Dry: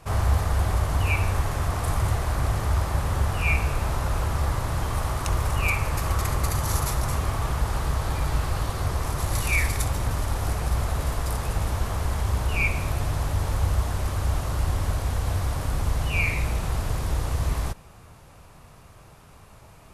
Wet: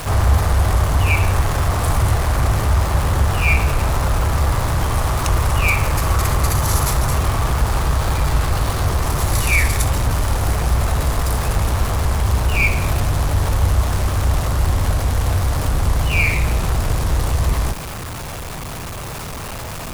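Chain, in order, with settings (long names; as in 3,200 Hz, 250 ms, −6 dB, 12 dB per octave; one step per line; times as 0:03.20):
converter with a step at zero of −30 dBFS
level +6 dB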